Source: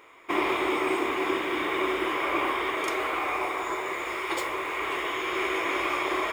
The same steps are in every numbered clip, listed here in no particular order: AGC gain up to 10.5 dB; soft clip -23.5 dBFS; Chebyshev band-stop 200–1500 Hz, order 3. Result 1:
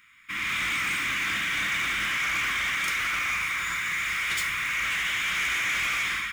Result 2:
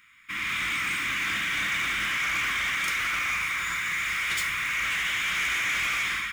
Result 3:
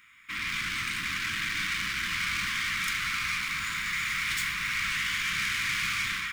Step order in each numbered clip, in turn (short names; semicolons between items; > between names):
Chebyshev band-stop > AGC > soft clip; AGC > Chebyshev band-stop > soft clip; AGC > soft clip > Chebyshev band-stop